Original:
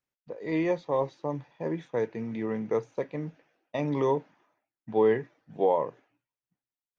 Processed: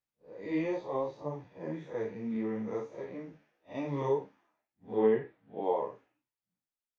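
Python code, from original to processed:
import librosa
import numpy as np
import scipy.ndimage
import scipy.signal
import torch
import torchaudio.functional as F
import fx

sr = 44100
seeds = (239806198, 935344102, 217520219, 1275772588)

y = fx.spec_blur(x, sr, span_ms=108.0)
y = fx.lowpass(y, sr, hz=3700.0, slope=24, at=(4.99, 5.63))
y = fx.ensemble(y, sr)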